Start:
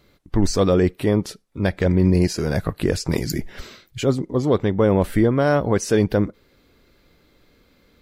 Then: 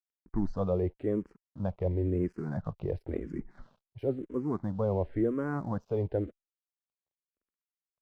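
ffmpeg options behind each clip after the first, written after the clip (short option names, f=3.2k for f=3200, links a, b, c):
-filter_complex "[0:a]lowpass=1.1k,aeval=exprs='sgn(val(0))*max(abs(val(0))-0.00355,0)':c=same,asplit=2[a][b];[b]afreqshift=-0.96[c];[a][c]amix=inputs=2:normalize=1,volume=-9dB"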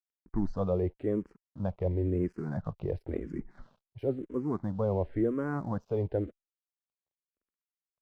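-af anull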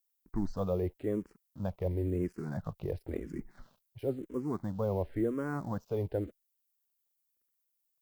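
-af "aemphasis=mode=production:type=75fm,volume=-2dB"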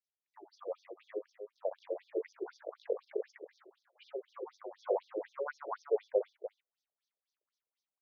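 -af "dynaudnorm=f=710:g=3:m=10dB,aecho=1:1:63|300:0.376|0.282,afftfilt=real='re*between(b*sr/1024,480*pow(4800/480,0.5+0.5*sin(2*PI*4*pts/sr))/1.41,480*pow(4800/480,0.5+0.5*sin(2*PI*4*pts/sr))*1.41)':imag='im*between(b*sr/1024,480*pow(4800/480,0.5+0.5*sin(2*PI*4*pts/sr))/1.41,480*pow(4800/480,0.5+0.5*sin(2*PI*4*pts/sr))*1.41)':win_size=1024:overlap=0.75,volume=-4dB"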